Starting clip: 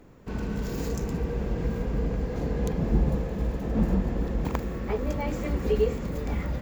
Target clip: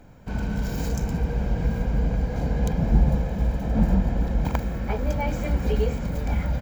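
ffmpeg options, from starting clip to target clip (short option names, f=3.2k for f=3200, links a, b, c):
-af "aecho=1:1:1.3:0.54,volume=2dB"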